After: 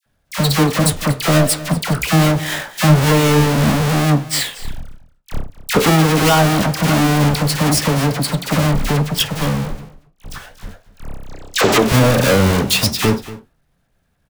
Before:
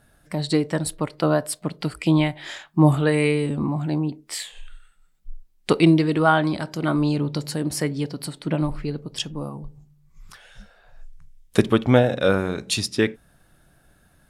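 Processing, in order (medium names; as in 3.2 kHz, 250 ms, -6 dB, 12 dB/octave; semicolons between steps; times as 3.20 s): square wave that keeps the level; time-frequency box 11.27–11.78 s, 270–8100 Hz +12 dB; gate with hold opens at -39 dBFS; peaking EQ 340 Hz -8.5 dB 0.22 oct; in parallel at -2 dB: compressor with a negative ratio -23 dBFS, ratio -1; on the sum: hard clipper -5.5 dBFS, distortion -12 dB; flange 1.3 Hz, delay 9.2 ms, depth 6.7 ms, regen +71%; phase dispersion lows, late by 62 ms, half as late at 1.3 kHz; on a send: delay 234 ms -17.5 dB; on the sum: loudness maximiser +6.5 dB; trim -1 dB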